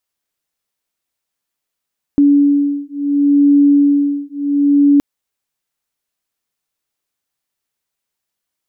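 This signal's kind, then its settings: beating tones 285 Hz, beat 0.71 Hz, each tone -12 dBFS 2.82 s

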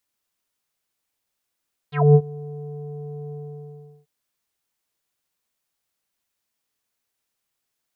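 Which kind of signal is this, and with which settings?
synth note square D3 24 dB/octave, low-pass 560 Hz, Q 6, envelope 3 oct, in 0.11 s, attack 229 ms, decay 0.06 s, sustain -23.5 dB, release 0.74 s, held 1.40 s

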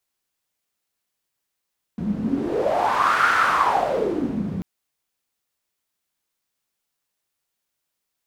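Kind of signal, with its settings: wind-like swept noise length 2.64 s, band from 190 Hz, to 1.4 kHz, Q 6.5, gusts 1, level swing 8 dB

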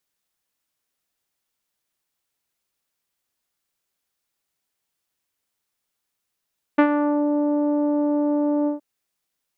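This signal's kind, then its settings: synth note saw D4 24 dB/octave, low-pass 780 Hz, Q 0.77, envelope 1.5 oct, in 0.46 s, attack 10 ms, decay 0.08 s, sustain -8 dB, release 0.13 s, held 1.89 s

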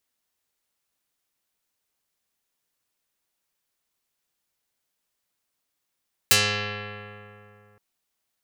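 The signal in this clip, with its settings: plucked string G#2, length 1.47 s, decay 2.85 s, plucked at 0.33, dark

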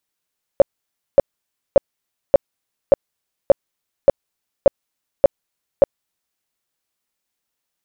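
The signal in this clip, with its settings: tone bursts 558 Hz, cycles 10, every 0.58 s, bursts 10, -4 dBFS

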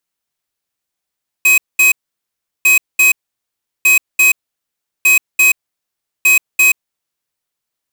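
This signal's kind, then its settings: beep pattern square 2.53 kHz, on 0.13 s, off 0.21 s, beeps 2, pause 0.73 s, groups 5, -9 dBFS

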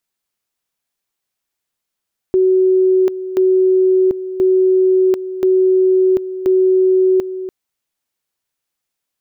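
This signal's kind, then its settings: two-level tone 374 Hz -9 dBFS, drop 12.5 dB, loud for 0.74 s, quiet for 0.29 s, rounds 5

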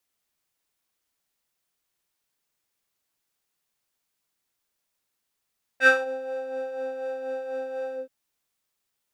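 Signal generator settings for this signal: synth patch with tremolo C5, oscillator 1 square, oscillator 2 square, interval -12 st, detune 18 cents, oscillator 2 level -8 dB, noise -14 dB, filter bandpass, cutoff 350 Hz, Q 2.7, filter envelope 2.5 oct, attack 71 ms, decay 0.18 s, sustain -20 dB, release 0.14 s, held 2.14 s, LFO 4.1 Hz, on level 5 dB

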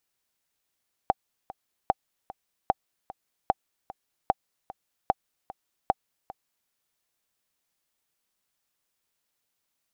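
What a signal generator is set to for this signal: metronome 150 bpm, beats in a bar 2, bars 7, 773 Hz, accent 18 dB -7.5 dBFS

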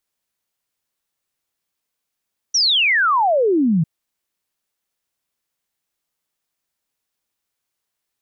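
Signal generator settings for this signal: log sweep 6 kHz -> 150 Hz 1.30 s -13 dBFS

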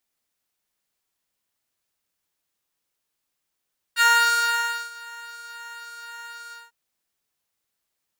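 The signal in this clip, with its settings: synth patch with pulse-width modulation A#5, oscillator 2 square, interval +7 st, detune 25 cents, oscillator 2 level -2 dB, sub -7.5 dB, noise -27.5 dB, filter highpass, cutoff 810 Hz, Q 1.4, filter envelope 1.5 oct, filter decay 0.10 s, filter sustain 30%, attack 44 ms, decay 0.90 s, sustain -23 dB, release 0.19 s, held 2.56 s, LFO 1.9 Hz, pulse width 13%, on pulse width 8%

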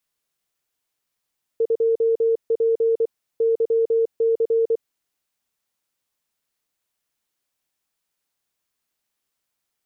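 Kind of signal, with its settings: Morse "2P YC" 24 wpm 455 Hz -15.5 dBFS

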